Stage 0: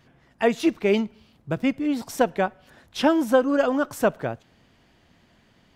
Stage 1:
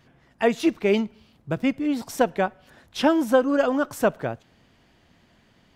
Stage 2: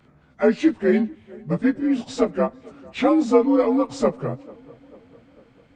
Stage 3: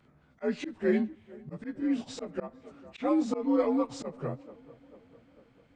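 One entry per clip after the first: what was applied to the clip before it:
nothing audible
inharmonic rescaling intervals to 87%; low shelf 300 Hz +5.5 dB; tape echo 0.446 s, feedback 62%, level -22 dB, low-pass 1400 Hz; gain +2 dB
auto swell 0.153 s; gain -7.5 dB

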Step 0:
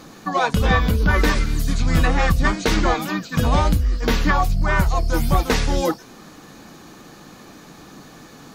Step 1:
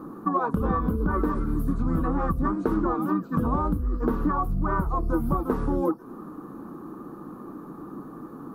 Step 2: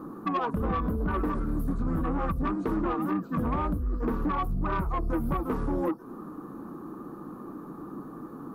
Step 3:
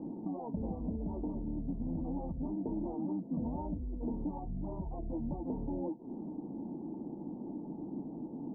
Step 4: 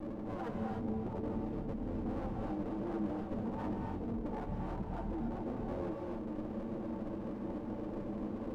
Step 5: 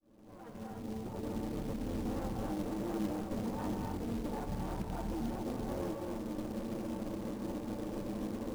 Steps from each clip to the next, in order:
EQ curve 100 Hz 0 dB, 330 Hz +12 dB, 670 Hz -2 dB, 1200 Hz +9 dB, 2100 Hz -20 dB, 4500 Hz -24 dB, 6700 Hz -24 dB, 11000 Hz -5 dB; compressor, threshold -17 dBFS, peak gain reduction 9.5 dB; gain -4 dB
soft clip -20.5 dBFS, distortion -15 dB; gain -1 dB
compressor, threshold -32 dBFS, peak gain reduction 7.5 dB; rippled Chebyshev low-pass 930 Hz, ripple 6 dB; gain +1 dB
minimum comb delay 9.1 ms; limiter -34 dBFS, peak gain reduction 7 dB; non-linear reverb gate 0.32 s rising, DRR 1 dB; gain +1.5 dB
opening faded in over 1.62 s; short-mantissa float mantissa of 2-bit; gain +1 dB

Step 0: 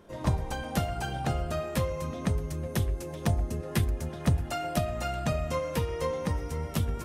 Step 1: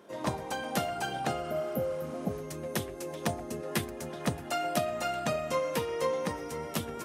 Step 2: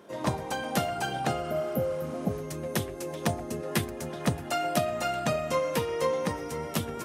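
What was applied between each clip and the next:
HPF 240 Hz 12 dB/oct; spectral repair 1.46–2.36, 860–11000 Hz both; gain +1.5 dB
bell 110 Hz +3.5 dB 1.3 oct; gain +2.5 dB

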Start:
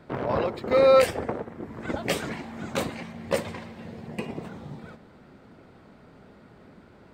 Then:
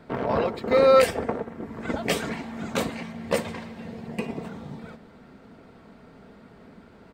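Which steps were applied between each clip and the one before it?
comb 4.4 ms, depth 31%; gain +1.5 dB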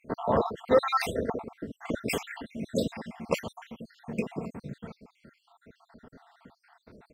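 random spectral dropouts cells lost 67%

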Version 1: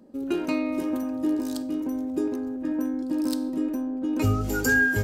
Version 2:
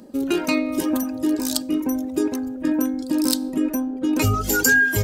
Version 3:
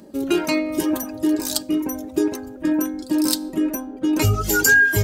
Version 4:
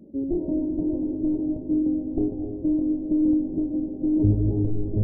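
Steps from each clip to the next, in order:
reverb removal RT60 1.1 s; high shelf 2100 Hz +9.5 dB; in parallel at -1 dB: negative-ratio compressor -28 dBFS, ratio -1; on the sum: gain +1.5 dB
notch comb 250 Hz; gain +2.5 dB
one-sided fold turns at -16.5 dBFS; Gaussian blur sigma 19 samples; plate-style reverb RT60 4.4 s, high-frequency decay 0.75×, pre-delay 0.11 s, DRR 3.5 dB

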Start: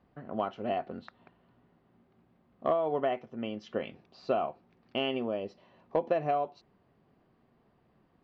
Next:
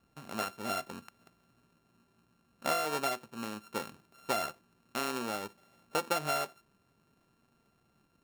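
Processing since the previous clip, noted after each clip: sample sorter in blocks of 32 samples; gain -3.5 dB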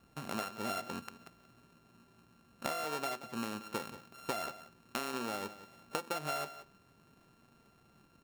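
compressor 8:1, threshold -40 dBFS, peak gain reduction 14 dB; echo 0.18 s -14.5 dB; gain +5.5 dB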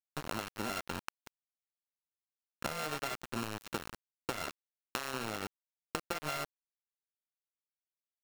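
compressor 8:1, threshold -39 dBFS, peak gain reduction 8.5 dB; sample gate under -41 dBFS; gain +6.5 dB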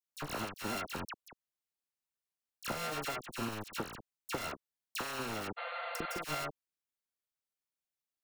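dispersion lows, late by 57 ms, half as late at 1900 Hz; spectral repair 5.6–6.16, 480–4600 Hz after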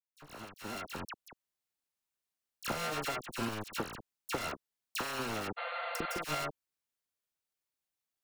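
opening faded in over 1.43 s; Doppler distortion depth 0.15 ms; gain +2 dB

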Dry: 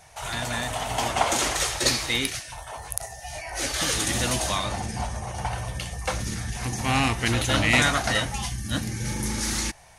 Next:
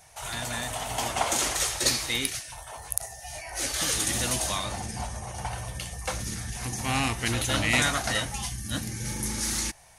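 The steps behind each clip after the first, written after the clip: high shelf 6900 Hz +8.5 dB; gain -4.5 dB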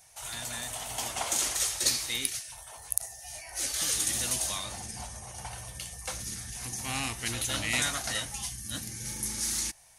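high shelf 3100 Hz +9.5 dB; gain -9 dB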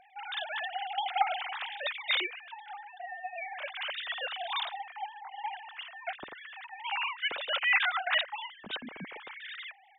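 sine-wave speech; gain -1.5 dB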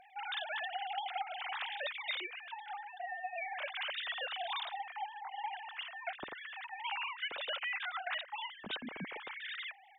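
compressor 16:1, threshold -35 dBFS, peak gain reduction 16 dB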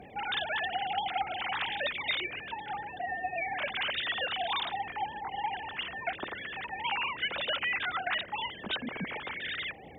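band noise 50–620 Hz -58 dBFS; gain +6.5 dB

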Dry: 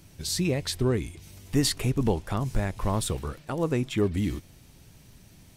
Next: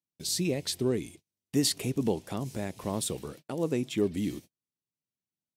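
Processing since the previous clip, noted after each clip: gate -40 dBFS, range -41 dB; HPF 190 Hz 12 dB/oct; bell 1300 Hz -10 dB 1.6 oct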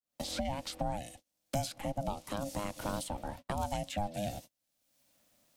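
opening faded in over 0.89 s; ring modulator 410 Hz; three-band squash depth 100%; gain -3 dB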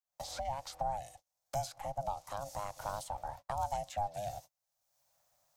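EQ curve 140 Hz 0 dB, 230 Hz -18 dB, 390 Hz -10 dB, 770 Hz +9 dB, 2900 Hz -5 dB, 6400 Hz +4 dB, 9500 Hz -2 dB, 15000 Hz +2 dB; gain -5.5 dB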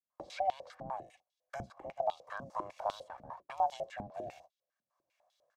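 octaver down 1 oct, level -3 dB; comb 1.8 ms, depth 44%; stepped band-pass 10 Hz 230–3500 Hz; gain +10 dB

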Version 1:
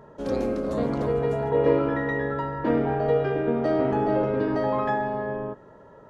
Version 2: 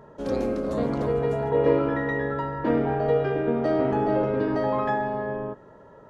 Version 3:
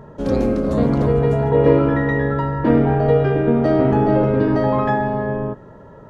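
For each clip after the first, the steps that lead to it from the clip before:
nothing audible
tone controls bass +8 dB, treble -1 dB; gain +5.5 dB

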